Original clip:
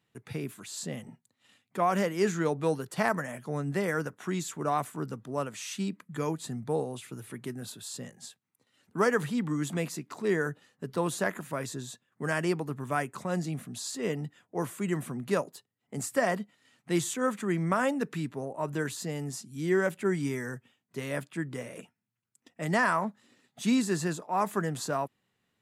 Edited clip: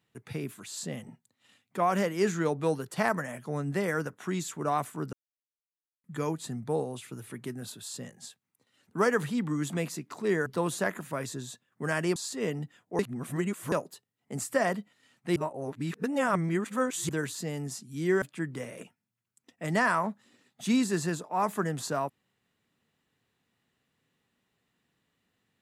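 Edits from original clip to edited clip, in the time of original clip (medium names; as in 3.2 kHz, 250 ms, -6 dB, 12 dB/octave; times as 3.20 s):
5.13–6.04 s: mute
10.46–10.86 s: delete
12.56–13.78 s: delete
14.61–15.34 s: reverse
16.98–18.71 s: reverse
19.84–21.20 s: delete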